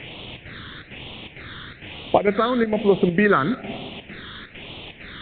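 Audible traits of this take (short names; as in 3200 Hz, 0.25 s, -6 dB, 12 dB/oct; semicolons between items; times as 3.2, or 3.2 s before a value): a quantiser's noise floor 6-bit, dither triangular; chopped level 2.2 Hz, depth 60%, duty 80%; phasing stages 8, 1.1 Hz, lowest notch 740–1600 Hz; µ-law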